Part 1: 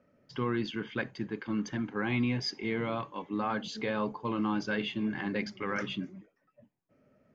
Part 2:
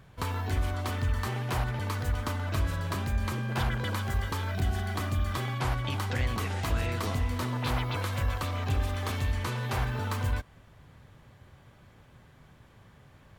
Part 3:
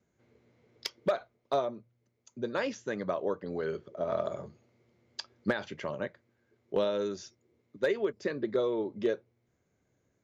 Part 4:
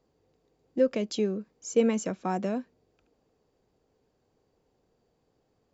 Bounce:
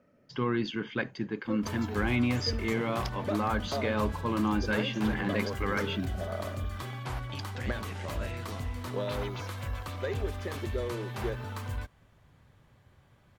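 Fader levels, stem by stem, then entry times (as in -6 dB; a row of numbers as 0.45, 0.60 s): +2.0, -6.5, -6.0, -15.5 dB; 0.00, 1.45, 2.20, 0.70 s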